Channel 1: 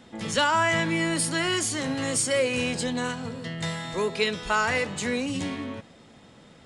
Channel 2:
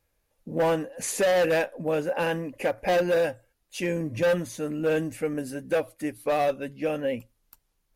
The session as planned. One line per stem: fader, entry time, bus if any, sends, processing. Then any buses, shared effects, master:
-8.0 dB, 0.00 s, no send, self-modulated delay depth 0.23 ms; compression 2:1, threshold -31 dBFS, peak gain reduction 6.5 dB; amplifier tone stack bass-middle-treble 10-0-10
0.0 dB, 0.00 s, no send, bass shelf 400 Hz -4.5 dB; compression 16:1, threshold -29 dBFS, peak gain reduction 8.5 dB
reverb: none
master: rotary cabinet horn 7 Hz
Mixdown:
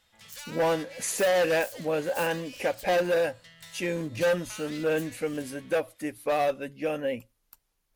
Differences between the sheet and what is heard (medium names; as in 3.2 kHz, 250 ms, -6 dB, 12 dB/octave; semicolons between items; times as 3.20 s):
stem 2: missing compression 16:1, threshold -29 dBFS, peak gain reduction 8.5 dB; master: missing rotary cabinet horn 7 Hz